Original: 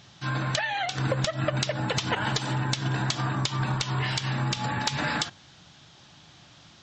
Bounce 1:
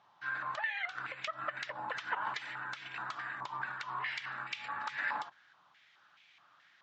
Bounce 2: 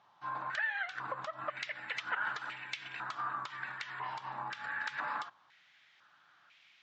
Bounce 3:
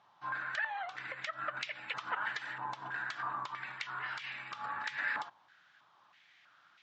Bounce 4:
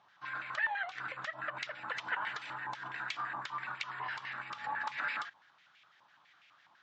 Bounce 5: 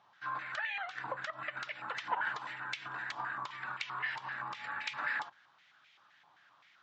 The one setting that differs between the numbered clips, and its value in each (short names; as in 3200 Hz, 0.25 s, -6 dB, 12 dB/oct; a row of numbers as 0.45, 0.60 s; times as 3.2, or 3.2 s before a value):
stepped band-pass, rate: 4.7, 2, 3.1, 12, 7.7 Hz